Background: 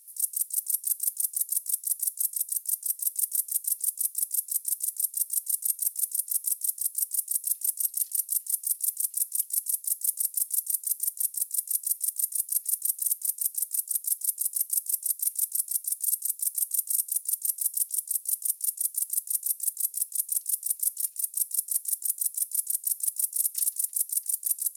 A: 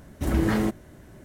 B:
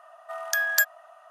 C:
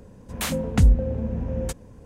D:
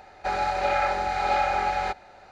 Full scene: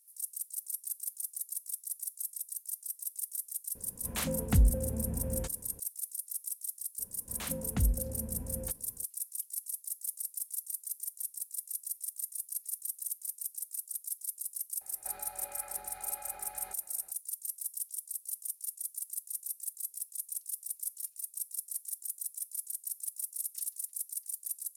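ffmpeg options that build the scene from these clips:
-filter_complex "[3:a]asplit=2[a][b];[0:a]volume=-10.5dB[c];[4:a]acompressor=threshold=-30dB:ratio=6:attack=3.2:release=140:knee=1:detection=peak[d];[a]atrim=end=2.05,asetpts=PTS-STARTPTS,volume=-8dB,afade=t=in:d=0.004:c=hsin,afade=t=out:st=2.046:d=0.004:c=hsin,adelay=3750[e];[b]atrim=end=2.05,asetpts=PTS-STARTPTS,volume=-13dB,afade=t=in:d=0.004:c=hsin,afade=t=out:st=2.046:d=0.004:c=hsin,adelay=6990[f];[d]atrim=end=2.31,asetpts=PTS-STARTPTS,volume=-15.5dB,afade=t=in:d=0.004:c=hsin,afade=t=out:st=2.306:d=0.004:c=hsin,adelay=14810[g];[c][e][f][g]amix=inputs=4:normalize=0"

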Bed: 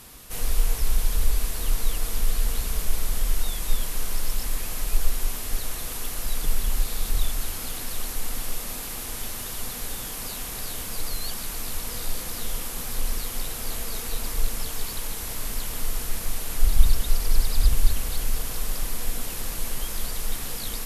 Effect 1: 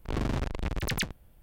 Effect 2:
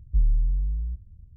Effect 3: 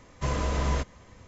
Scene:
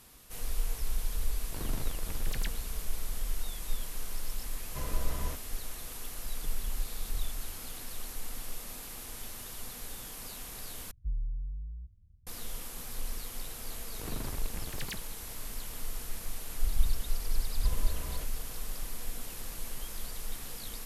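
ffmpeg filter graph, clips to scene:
-filter_complex "[1:a]asplit=2[a][b];[3:a]asplit=2[c][d];[0:a]volume=-10dB,asplit=2[e][f];[e]atrim=end=10.914[g];[2:a]atrim=end=1.36,asetpts=PTS-STARTPTS,volume=-13dB[h];[f]atrim=start=12.266[i];[a]atrim=end=1.42,asetpts=PTS-STARTPTS,volume=-10.5dB,afade=t=in:d=0.004:c=hsin,afade=t=out:st=1.416:d=0.004:c=hsin,adelay=1440[j];[c]atrim=end=1.27,asetpts=PTS-STARTPTS,volume=-12dB,afade=t=in:d=0.004:c=hsin,afade=t=out:st=1.266:d=0.004:c=hsin,adelay=199773S[k];[b]atrim=end=1.42,asetpts=PTS-STARTPTS,volume=-10.5dB,afade=t=in:d=0.004:c=hsin,afade=t=out:st=1.416:d=0.004:c=hsin,adelay=13910[l];[d]atrim=end=1.27,asetpts=PTS-STARTPTS,volume=-16.5dB,afade=t=in:d=0.004:c=hsin,afade=t=out:st=1.266:d=0.004:c=hsin,adelay=17420[m];[g][h]acrossfade=d=0.004:c1=hsin:c2=hsin[n];[n][i]acrossfade=d=0.004:c1=hsin:c2=hsin[o];[o][j][k][l][m]amix=inputs=5:normalize=0"

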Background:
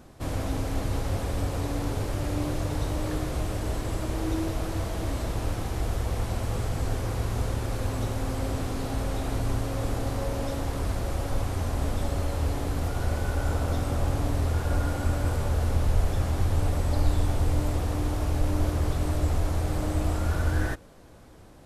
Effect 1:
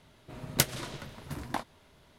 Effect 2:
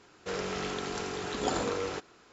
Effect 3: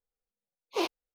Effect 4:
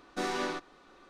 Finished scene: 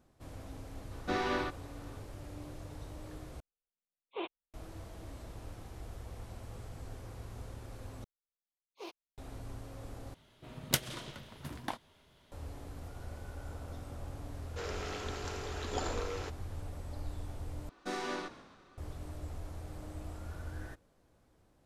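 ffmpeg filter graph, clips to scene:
-filter_complex "[4:a]asplit=2[a][b];[3:a]asplit=2[c][d];[0:a]volume=-17.5dB[e];[a]lowpass=4.2k[f];[c]aresample=8000,aresample=44100[g];[1:a]equalizer=f=3.2k:w=3.8:g=5[h];[2:a]highpass=270[i];[b]asplit=6[j][k][l][m][n][o];[k]adelay=137,afreqshift=-55,volume=-15.5dB[p];[l]adelay=274,afreqshift=-110,volume=-21.3dB[q];[m]adelay=411,afreqshift=-165,volume=-27.2dB[r];[n]adelay=548,afreqshift=-220,volume=-33dB[s];[o]adelay=685,afreqshift=-275,volume=-38.9dB[t];[j][p][q][r][s][t]amix=inputs=6:normalize=0[u];[e]asplit=5[v][w][x][y][z];[v]atrim=end=3.404[aa];[g]atrim=end=1.14,asetpts=PTS-STARTPTS,volume=-9.5dB[ab];[w]atrim=start=4.536:end=8.044[ac];[d]atrim=end=1.14,asetpts=PTS-STARTPTS,volume=-17dB[ad];[x]atrim=start=9.176:end=10.144[ae];[h]atrim=end=2.18,asetpts=PTS-STARTPTS,volume=-5dB[af];[y]atrim=start=12.316:end=17.694[ag];[u]atrim=end=1.09,asetpts=PTS-STARTPTS,volume=-5dB[ah];[z]atrim=start=18.776[ai];[f]atrim=end=1.09,asetpts=PTS-STARTPTS,afade=t=in:d=0.004:c=hsin,afade=t=out:st=1.086:d=0.004:c=hsin,adelay=910[aj];[i]atrim=end=2.32,asetpts=PTS-STARTPTS,volume=-6dB,afade=t=in:d=0.004:c=hsin,afade=t=out:st=2.316:d=0.004:c=hsin,adelay=14300[ak];[aa][ab]acrossfade=d=0.004:c1=hsin:c2=hsin[al];[al][ac]acrossfade=d=0.004:c1=hsin:c2=hsin[am];[am][ad]acrossfade=d=0.004:c1=hsin:c2=hsin[an];[an][ae]acrossfade=d=0.004:c1=hsin:c2=hsin[ao];[ao][af]acrossfade=d=0.004:c1=hsin:c2=hsin[ap];[ap][ag]acrossfade=d=0.004:c1=hsin:c2=hsin[aq];[aq][ah]acrossfade=d=0.004:c1=hsin:c2=hsin[ar];[ar][ai]acrossfade=d=0.004:c1=hsin:c2=hsin[as];[as][aj][ak]amix=inputs=3:normalize=0"

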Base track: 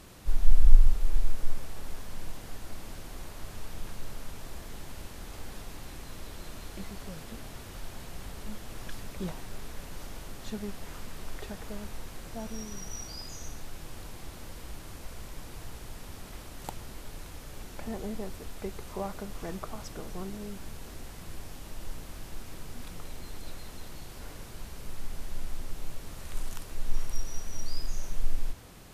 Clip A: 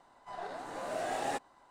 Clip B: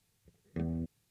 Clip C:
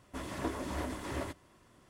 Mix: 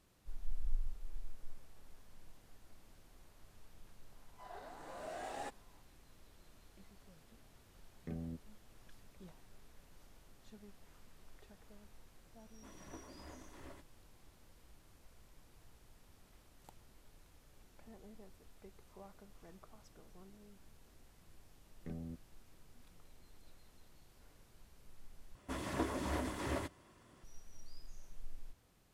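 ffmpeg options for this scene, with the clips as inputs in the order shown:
-filter_complex "[2:a]asplit=2[a][b];[3:a]asplit=2[c][d];[0:a]volume=-20dB,asplit=2[e][f];[e]atrim=end=25.354[g];[d]atrim=end=1.89,asetpts=PTS-STARTPTS,volume=-1dB[h];[f]atrim=start=27.236[i];[1:a]atrim=end=1.7,asetpts=PTS-STARTPTS,volume=-10dB,afade=t=in:d=0.004:c=hsin,afade=t=out:st=1.696:d=0.004:c=hsin,adelay=4120[j];[a]atrim=end=1.1,asetpts=PTS-STARTPTS,volume=-8.5dB,afade=t=in:d=0.004:c=hsin,afade=t=out:st=1.096:d=0.004:c=hsin,adelay=7510[k];[c]atrim=end=1.89,asetpts=PTS-STARTPTS,volume=-17dB,afade=t=in:d=0.004:c=hsin,afade=t=out:st=1.886:d=0.004:c=hsin,adelay=12490[l];[b]atrim=end=1.1,asetpts=PTS-STARTPTS,volume=-10.5dB,afade=t=in:d=0.004:c=hsin,afade=t=out:st=1.096:d=0.004:c=hsin,adelay=21300[m];[g][h]acrossfade=d=0.004:c1=hsin:c2=hsin[n];[n][i]acrossfade=d=0.004:c1=hsin:c2=hsin[o];[o][j][k][l][m]amix=inputs=5:normalize=0"

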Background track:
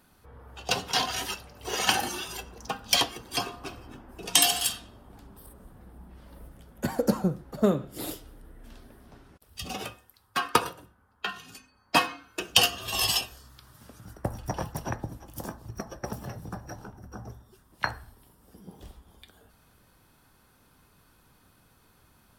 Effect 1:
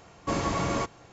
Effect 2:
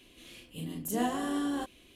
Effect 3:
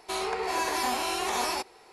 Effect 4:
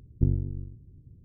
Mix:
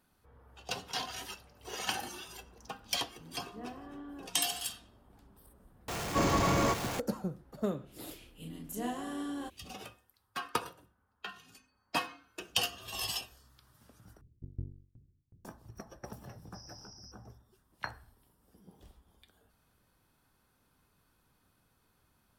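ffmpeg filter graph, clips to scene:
-filter_complex "[2:a]asplit=2[a][b];[1:a]asplit=2[c][d];[0:a]volume=-10.5dB[e];[a]lowpass=1.9k[f];[c]aeval=exprs='val(0)+0.5*0.0316*sgn(val(0))':c=same[g];[4:a]aeval=exprs='val(0)*pow(10,-29*if(lt(mod(2.7*n/s,1),2*abs(2.7)/1000),1-mod(2.7*n/s,1)/(2*abs(2.7)/1000),(mod(2.7*n/s,1)-2*abs(2.7)/1000)/(1-2*abs(2.7)/1000))/20)':c=same[h];[d]asuperpass=centerf=5400:order=20:qfactor=5[i];[e]asplit=2[j][k];[j]atrim=end=14.214[l];[h]atrim=end=1.24,asetpts=PTS-STARTPTS,volume=-5.5dB[m];[k]atrim=start=15.446[n];[f]atrim=end=1.95,asetpts=PTS-STARTPTS,volume=-14.5dB,afade=t=in:d=0.004:c=hsin,afade=t=out:st=1.946:d=0.004:c=hsin,adelay=2630[o];[g]atrim=end=1.12,asetpts=PTS-STARTPTS,volume=-2dB,afade=t=in:d=0.004:c=hsin,afade=t=out:st=1.116:d=0.004:c=hsin,adelay=5880[p];[b]atrim=end=1.95,asetpts=PTS-STARTPTS,volume=-6.5dB,afade=t=in:d=0.05,afade=t=out:st=1.9:d=0.05,adelay=7840[q];[i]atrim=end=1.12,asetpts=PTS-STARTPTS,volume=-4.5dB,afade=t=in:d=0.004:c=hsin,afade=t=out:st=1.116:d=0.004:c=hsin,adelay=16260[r];[l][m]acrossfade=d=0.004:c1=hsin:c2=hsin[s];[s][n]acrossfade=d=0.004:c1=hsin:c2=hsin[t];[t][o][p][q][r]amix=inputs=5:normalize=0"

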